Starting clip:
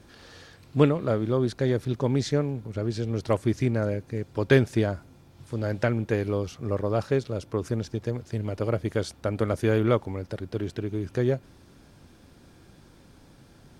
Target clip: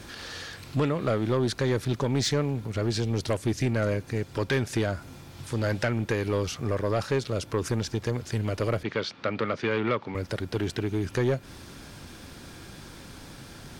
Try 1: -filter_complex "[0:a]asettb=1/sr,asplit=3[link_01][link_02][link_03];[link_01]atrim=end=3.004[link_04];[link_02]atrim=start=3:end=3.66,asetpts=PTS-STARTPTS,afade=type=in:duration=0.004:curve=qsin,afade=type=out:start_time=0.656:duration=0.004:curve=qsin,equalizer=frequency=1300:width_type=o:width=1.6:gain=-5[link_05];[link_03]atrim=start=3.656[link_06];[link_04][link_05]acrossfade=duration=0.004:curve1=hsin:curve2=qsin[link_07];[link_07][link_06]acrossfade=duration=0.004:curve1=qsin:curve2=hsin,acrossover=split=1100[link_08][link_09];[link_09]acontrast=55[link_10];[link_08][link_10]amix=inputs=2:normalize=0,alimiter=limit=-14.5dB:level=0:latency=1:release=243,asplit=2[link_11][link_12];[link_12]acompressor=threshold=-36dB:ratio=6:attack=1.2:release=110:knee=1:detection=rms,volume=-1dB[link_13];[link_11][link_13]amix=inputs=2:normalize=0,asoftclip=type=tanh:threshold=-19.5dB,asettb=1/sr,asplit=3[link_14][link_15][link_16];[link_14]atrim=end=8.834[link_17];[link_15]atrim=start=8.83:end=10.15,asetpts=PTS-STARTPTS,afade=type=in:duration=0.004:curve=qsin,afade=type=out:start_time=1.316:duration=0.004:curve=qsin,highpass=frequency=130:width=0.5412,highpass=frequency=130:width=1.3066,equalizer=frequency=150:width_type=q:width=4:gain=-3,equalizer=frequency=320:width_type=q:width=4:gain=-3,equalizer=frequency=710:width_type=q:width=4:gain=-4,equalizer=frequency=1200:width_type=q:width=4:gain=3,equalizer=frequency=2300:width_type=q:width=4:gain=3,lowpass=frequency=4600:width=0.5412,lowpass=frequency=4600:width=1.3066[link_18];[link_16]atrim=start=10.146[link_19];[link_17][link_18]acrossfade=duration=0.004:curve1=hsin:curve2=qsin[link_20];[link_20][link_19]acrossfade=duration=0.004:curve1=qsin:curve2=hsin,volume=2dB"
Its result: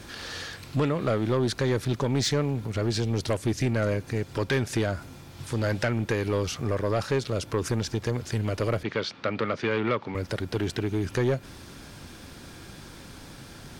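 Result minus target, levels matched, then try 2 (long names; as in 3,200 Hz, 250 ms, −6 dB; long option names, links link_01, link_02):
downward compressor: peak gain reduction −6.5 dB
-filter_complex "[0:a]asettb=1/sr,asplit=3[link_01][link_02][link_03];[link_01]atrim=end=3.004[link_04];[link_02]atrim=start=3:end=3.66,asetpts=PTS-STARTPTS,afade=type=in:duration=0.004:curve=qsin,afade=type=out:start_time=0.656:duration=0.004:curve=qsin,equalizer=frequency=1300:width_type=o:width=1.6:gain=-5[link_05];[link_03]atrim=start=3.656[link_06];[link_04][link_05]acrossfade=duration=0.004:curve1=hsin:curve2=qsin[link_07];[link_07][link_06]acrossfade=duration=0.004:curve1=qsin:curve2=hsin,acrossover=split=1100[link_08][link_09];[link_09]acontrast=55[link_10];[link_08][link_10]amix=inputs=2:normalize=0,alimiter=limit=-14.5dB:level=0:latency=1:release=243,asplit=2[link_11][link_12];[link_12]acompressor=threshold=-44dB:ratio=6:attack=1.2:release=110:knee=1:detection=rms,volume=-1dB[link_13];[link_11][link_13]amix=inputs=2:normalize=0,asoftclip=type=tanh:threshold=-19.5dB,asettb=1/sr,asplit=3[link_14][link_15][link_16];[link_14]atrim=end=8.834[link_17];[link_15]atrim=start=8.83:end=10.15,asetpts=PTS-STARTPTS,afade=type=in:duration=0.004:curve=qsin,afade=type=out:start_time=1.316:duration=0.004:curve=qsin,highpass=frequency=130:width=0.5412,highpass=frequency=130:width=1.3066,equalizer=frequency=150:width_type=q:width=4:gain=-3,equalizer=frequency=320:width_type=q:width=4:gain=-3,equalizer=frequency=710:width_type=q:width=4:gain=-4,equalizer=frequency=1200:width_type=q:width=4:gain=3,equalizer=frequency=2300:width_type=q:width=4:gain=3,lowpass=frequency=4600:width=0.5412,lowpass=frequency=4600:width=1.3066[link_18];[link_16]atrim=start=10.146[link_19];[link_17][link_18]acrossfade=duration=0.004:curve1=hsin:curve2=qsin[link_20];[link_20][link_19]acrossfade=duration=0.004:curve1=qsin:curve2=hsin,volume=2dB"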